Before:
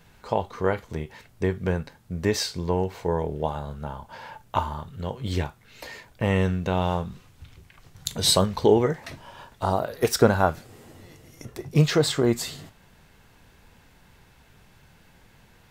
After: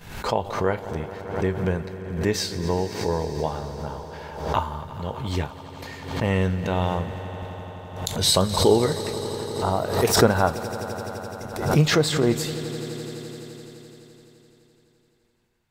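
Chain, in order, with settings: expander -42 dBFS; echo with a slow build-up 85 ms, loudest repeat 5, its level -18 dB; swell ahead of each attack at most 75 dB/s

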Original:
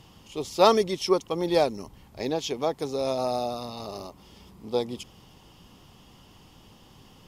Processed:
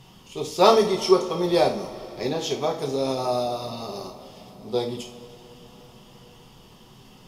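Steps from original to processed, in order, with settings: two-slope reverb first 0.38 s, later 4.9 s, from -22 dB, DRR 0 dB

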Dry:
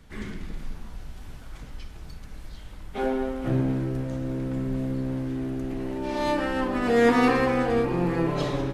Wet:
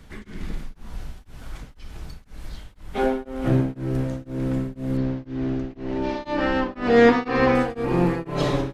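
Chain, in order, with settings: 4.97–7.55 s: low-pass 5.7 kHz 24 dB/octave; tremolo of two beating tones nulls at 2 Hz; trim +5.5 dB

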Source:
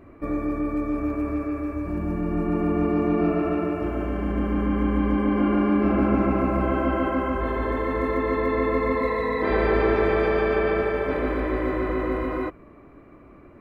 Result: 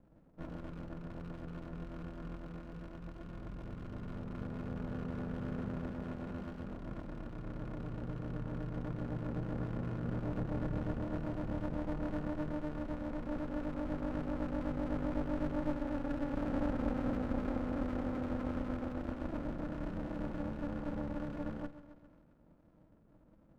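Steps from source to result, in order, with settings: rattle on loud lows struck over -37 dBFS, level -20 dBFS; cascade formant filter e; bass shelf 180 Hz +4 dB; hum notches 50/100/150/200/250/300 Hz; thinning echo 77 ms, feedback 64%, high-pass 250 Hz, level -14 dB; on a send at -19 dB: reverberation RT60 0.90 s, pre-delay 19 ms; on the sum: speed mistake 78 rpm record played at 45 rpm; sliding maximum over 65 samples; trim -1 dB

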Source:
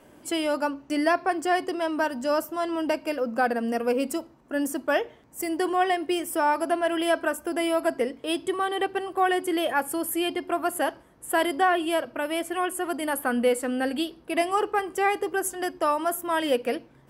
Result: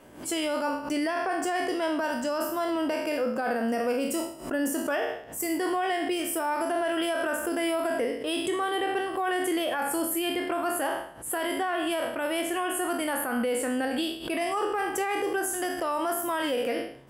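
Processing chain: spectral sustain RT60 0.54 s; peak limiter -20 dBFS, peak gain reduction 11 dB; swell ahead of each attack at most 120 dB/s

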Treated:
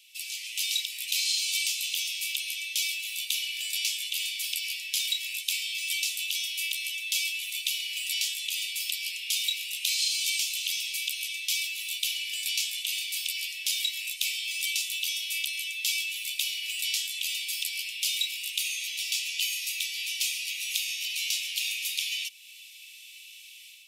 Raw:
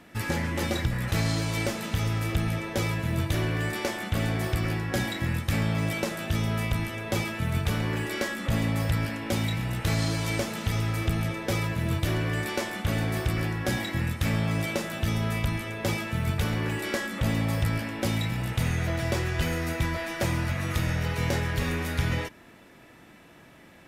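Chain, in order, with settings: level rider gain up to 8.5 dB; steep high-pass 2.5 kHz 72 dB/octave; in parallel at +1 dB: compression, threshold -47 dBFS, peak gain reduction 20.5 dB

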